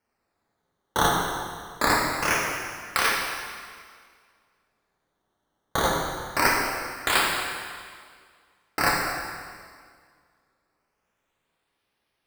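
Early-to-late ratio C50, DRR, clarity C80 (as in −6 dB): 0.5 dB, −3.0 dB, 2.0 dB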